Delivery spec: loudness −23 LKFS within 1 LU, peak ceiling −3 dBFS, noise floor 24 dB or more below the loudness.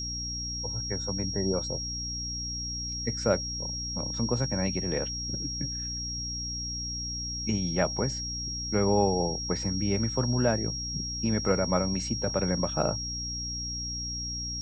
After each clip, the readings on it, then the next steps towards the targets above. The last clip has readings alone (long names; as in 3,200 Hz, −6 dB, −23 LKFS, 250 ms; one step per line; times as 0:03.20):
mains hum 60 Hz; hum harmonics up to 300 Hz; level of the hum −36 dBFS; interfering tone 5,600 Hz; level of the tone −33 dBFS; integrated loudness −29.5 LKFS; sample peak −11.0 dBFS; target loudness −23.0 LKFS
→ mains-hum notches 60/120/180/240/300 Hz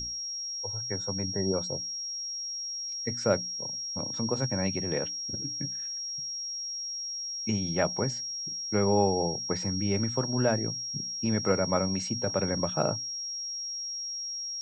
mains hum none found; interfering tone 5,600 Hz; level of the tone −33 dBFS
→ notch filter 5,600 Hz, Q 30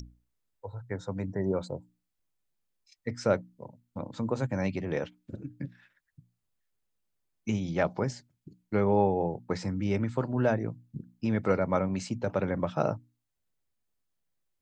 interfering tone none found; integrated loudness −31.0 LKFS; sample peak −11.5 dBFS; target loudness −23.0 LKFS
→ level +8 dB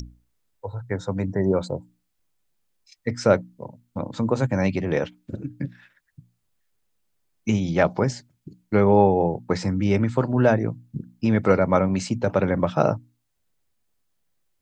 integrated loudness −23.0 LKFS; sample peak −3.5 dBFS; background noise floor −74 dBFS